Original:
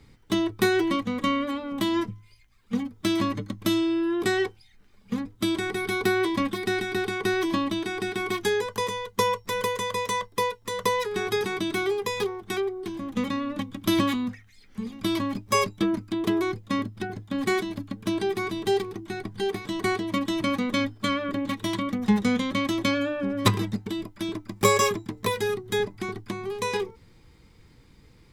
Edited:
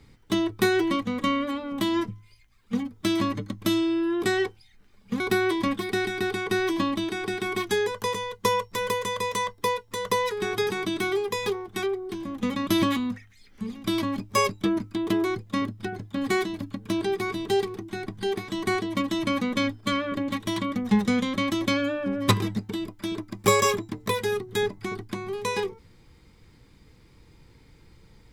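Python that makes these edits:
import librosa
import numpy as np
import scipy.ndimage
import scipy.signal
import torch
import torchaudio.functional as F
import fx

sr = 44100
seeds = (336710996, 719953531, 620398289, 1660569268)

y = fx.edit(x, sr, fx.cut(start_s=5.2, length_s=0.74),
    fx.cut(start_s=13.41, length_s=0.43), tone=tone)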